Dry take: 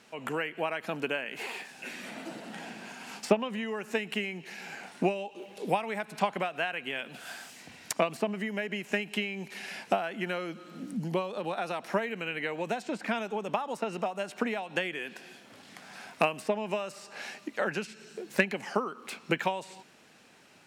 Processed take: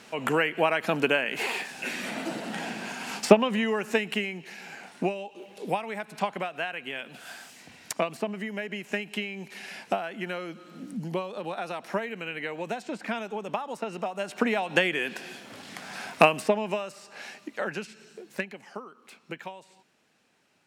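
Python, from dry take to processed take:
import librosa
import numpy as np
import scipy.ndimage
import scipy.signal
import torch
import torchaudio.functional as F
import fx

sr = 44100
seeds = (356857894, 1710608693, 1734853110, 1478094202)

y = fx.gain(x, sr, db=fx.line((3.67, 8.0), (4.61, -0.5), (14.01, -0.5), (14.65, 8.0), (16.34, 8.0), (16.96, -1.0), (17.97, -1.0), (18.64, -10.0)))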